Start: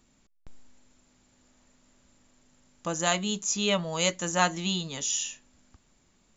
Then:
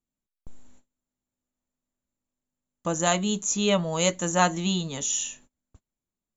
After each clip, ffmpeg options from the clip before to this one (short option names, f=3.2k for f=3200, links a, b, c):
-af "equalizer=f=2.4k:w=0.61:g=-5.5,agate=range=-29dB:threshold=-54dB:ratio=16:detection=peak,equalizer=f=5k:w=5.2:g=-10.5,volume=5dB"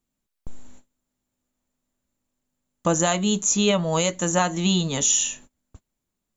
-af "alimiter=limit=-17.5dB:level=0:latency=1:release=300,volume=8dB"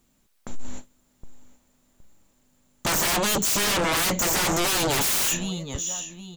-af "asoftclip=type=tanh:threshold=-15.5dB,aecho=1:1:767|1534:0.0794|0.0214,aeval=exprs='0.178*sin(PI/2*6.31*val(0)/0.178)':c=same,volume=-5dB"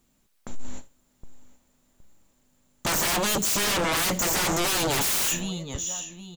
-af "aecho=1:1:82:0.0944,volume=-1.5dB"